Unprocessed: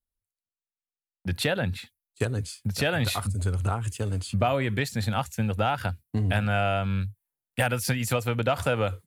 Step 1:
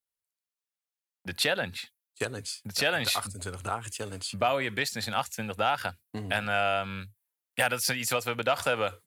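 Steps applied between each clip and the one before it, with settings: HPF 630 Hz 6 dB/oct; dynamic EQ 5000 Hz, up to +4 dB, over -47 dBFS, Q 2.2; gain +1.5 dB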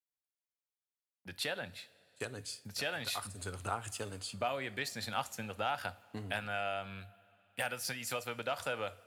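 vocal rider within 4 dB 0.5 s; two-slope reverb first 0.38 s, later 3.9 s, from -18 dB, DRR 14.5 dB; gain -8.5 dB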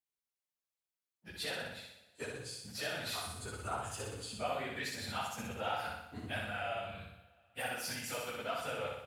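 phase scrambler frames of 50 ms; feedback echo 61 ms, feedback 57%, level -3 dB; gain -3.5 dB

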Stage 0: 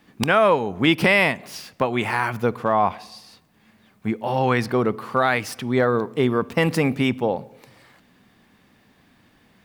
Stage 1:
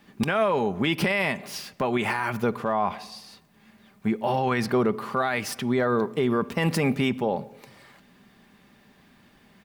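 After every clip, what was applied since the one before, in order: comb 5 ms, depth 33%; limiter -14.5 dBFS, peak gain reduction 11 dB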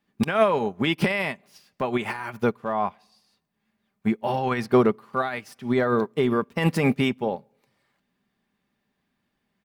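upward expander 2.5:1, over -36 dBFS; gain +6 dB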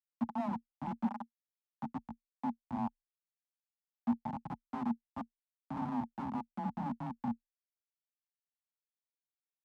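Schmitt trigger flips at -19.5 dBFS; double band-pass 420 Hz, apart 2 oct; frequency shift +22 Hz; gain +2.5 dB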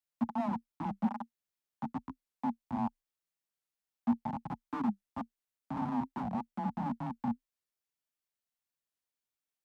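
record warp 45 rpm, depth 250 cents; gain +2.5 dB

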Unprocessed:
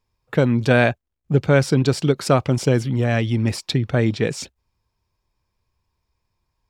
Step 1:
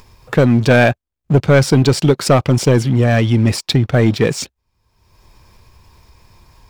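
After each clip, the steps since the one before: sample leveller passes 2; upward compressor, threshold -22 dBFS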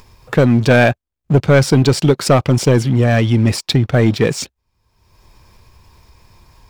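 nothing audible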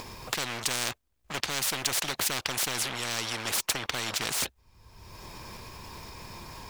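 spectral compressor 10:1; gain -4.5 dB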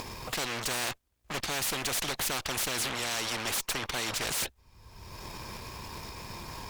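tube stage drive 31 dB, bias 0.55; gain +4.5 dB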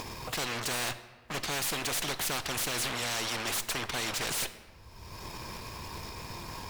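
hard clip -28 dBFS, distortion -16 dB; reverb RT60 1.5 s, pre-delay 3 ms, DRR 11.5 dB

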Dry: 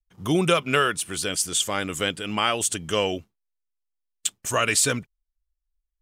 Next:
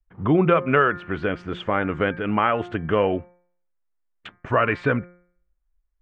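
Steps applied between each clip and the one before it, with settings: LPF 1900 Hz 24 dB/oct; de-hum 176.9 Hz, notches 13; in parallel at +1.5 dB: compressor, threshold -30 dBFS, peak gain reduction 13.5 dB; on the sum: gain +1.5 dB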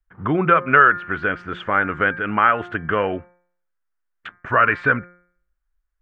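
bell 1500 Hz +12 dB 0.96 oct; gain -2.5 dB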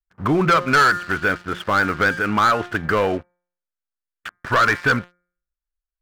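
sample leveller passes 3; gain -8 dB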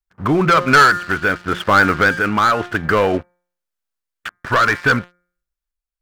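random-step tremolo; gain +6.5 dB

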